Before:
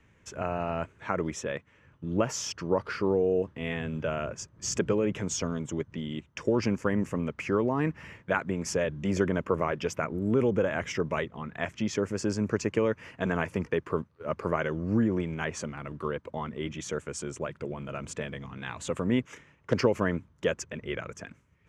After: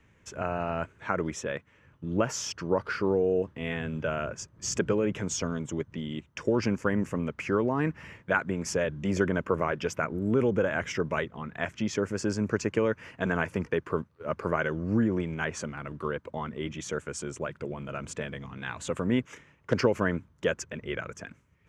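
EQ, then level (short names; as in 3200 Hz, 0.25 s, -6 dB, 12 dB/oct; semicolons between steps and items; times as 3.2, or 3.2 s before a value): dynamic EQ 1500 Hz, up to +5 dB, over -51 dBFS, Q 6; 0.0 dB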